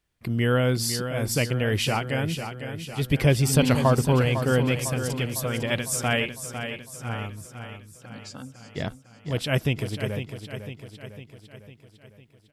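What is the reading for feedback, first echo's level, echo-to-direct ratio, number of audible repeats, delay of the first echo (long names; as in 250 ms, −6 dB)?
56%, −9.0 dB, −7.5 dB, 6, 503 ms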